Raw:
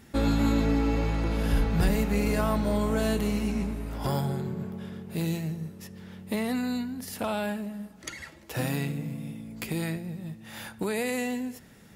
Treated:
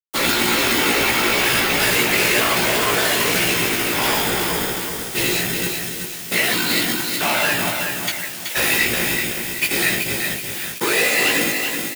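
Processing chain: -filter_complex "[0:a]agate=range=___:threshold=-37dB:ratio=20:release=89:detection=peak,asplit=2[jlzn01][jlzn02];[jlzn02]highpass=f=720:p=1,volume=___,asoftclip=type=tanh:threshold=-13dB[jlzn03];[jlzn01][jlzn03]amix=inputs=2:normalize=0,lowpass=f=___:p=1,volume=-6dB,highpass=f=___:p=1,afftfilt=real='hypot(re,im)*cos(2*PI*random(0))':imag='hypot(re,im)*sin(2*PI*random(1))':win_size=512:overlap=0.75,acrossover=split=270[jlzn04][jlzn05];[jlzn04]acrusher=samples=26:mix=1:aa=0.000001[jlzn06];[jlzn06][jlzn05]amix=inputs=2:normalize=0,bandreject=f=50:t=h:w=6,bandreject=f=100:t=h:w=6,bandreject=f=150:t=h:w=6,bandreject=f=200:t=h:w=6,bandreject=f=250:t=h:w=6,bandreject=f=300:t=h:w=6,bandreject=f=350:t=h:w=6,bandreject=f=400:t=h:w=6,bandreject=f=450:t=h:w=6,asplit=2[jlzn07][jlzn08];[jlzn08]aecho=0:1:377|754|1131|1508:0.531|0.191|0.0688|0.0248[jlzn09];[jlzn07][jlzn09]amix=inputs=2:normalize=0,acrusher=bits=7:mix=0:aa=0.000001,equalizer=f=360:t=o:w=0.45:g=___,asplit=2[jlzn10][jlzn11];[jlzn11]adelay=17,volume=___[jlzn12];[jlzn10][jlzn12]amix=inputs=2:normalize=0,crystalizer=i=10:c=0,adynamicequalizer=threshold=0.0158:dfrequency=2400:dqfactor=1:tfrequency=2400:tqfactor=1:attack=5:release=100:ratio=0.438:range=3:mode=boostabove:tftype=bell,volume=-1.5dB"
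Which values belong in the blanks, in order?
-19dB, 31dB, 1500, 52, 7, -4dB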